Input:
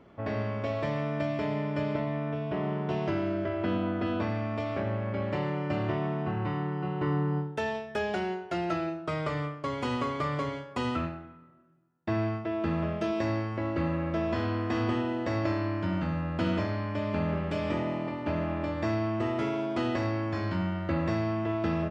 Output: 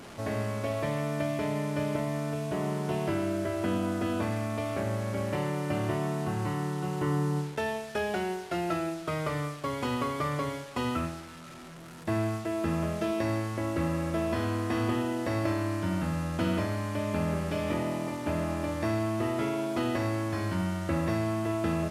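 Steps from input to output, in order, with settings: one-bit delta coder 64 kbps, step -40 dBFS

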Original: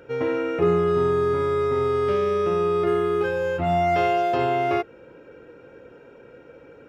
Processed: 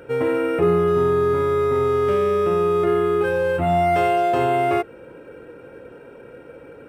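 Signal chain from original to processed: in parallel at -1.5 dB: peak limiter -21 dBFS, peak gain reduction 11 dB; on the sum: decimation joined by straight lines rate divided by 4×

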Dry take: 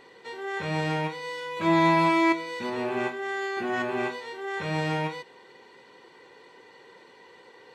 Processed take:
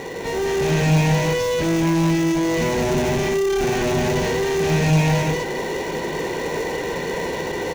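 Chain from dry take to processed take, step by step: rattle on loud lows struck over -36 dBFS, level -21 dBFS; overdrive pedal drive 38 dB, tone 7.3 kHz, clips at -10 dBFS; on a send: loudspeakers at several distances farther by 50 m -9 dB, 71 m -2 dB; on the sum: level rider gain up to 5 dB; high-pass 41 Hz; tilt EQ -3.5 dB/octave; in parallel at -6 dB: sample-rate reducer 1.6 kHz, jitter 0%; on the sum: saturation -9 dBFS, distortion -9 dB; graphic EQ with 31 bands 160 Hz +10 dB, 1.25 kHz -11 dB, 6.3 kHz +10 dB; trim -8.5 dB

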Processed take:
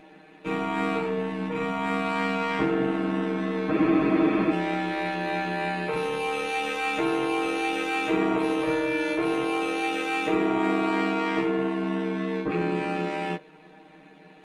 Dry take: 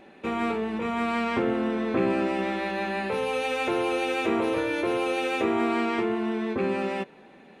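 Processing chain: band-stop 530 Hz, Q 12; granular stretch 1.9×, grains 27 ms; spectral freeze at 3.74 s, 0.78 s; trim +2 dB

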